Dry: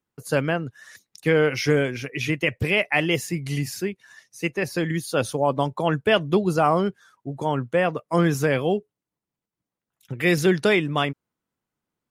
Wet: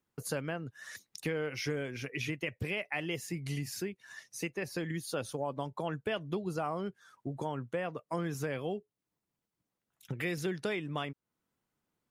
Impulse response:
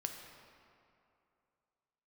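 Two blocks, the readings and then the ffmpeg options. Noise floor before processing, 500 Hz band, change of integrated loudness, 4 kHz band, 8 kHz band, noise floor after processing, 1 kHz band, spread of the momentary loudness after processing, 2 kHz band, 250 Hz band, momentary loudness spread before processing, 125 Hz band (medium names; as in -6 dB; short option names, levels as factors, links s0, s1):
under -85 dBFS, -14.5 dB, -14.0 dB, -13.0 dB, -8.5 dB, under -85 dBFS, -14.5 dB, 8 LU, -14.0 dB, -13.5 dB, 9 LU, -12.5 dB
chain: -af "acompressor=threshold=0.0141:ratio=3"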